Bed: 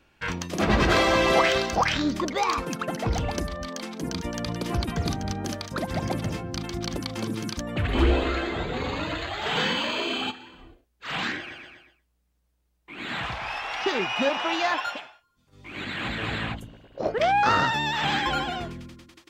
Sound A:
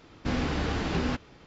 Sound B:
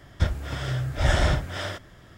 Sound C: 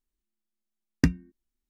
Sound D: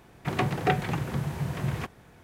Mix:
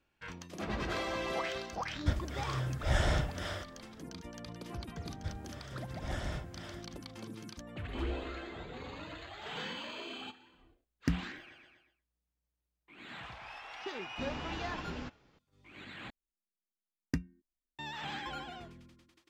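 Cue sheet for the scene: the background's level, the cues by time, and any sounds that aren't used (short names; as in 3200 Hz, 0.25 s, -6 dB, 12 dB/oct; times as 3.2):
bed -15.5 dB
1.86 add B -8 dB
5.04 add B -17.5 dB
10.04 add C -10 dB + sustainer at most 150 dB/s
13.93 add A -13.5 dB
16.1 replace with C -12 dB
not used: D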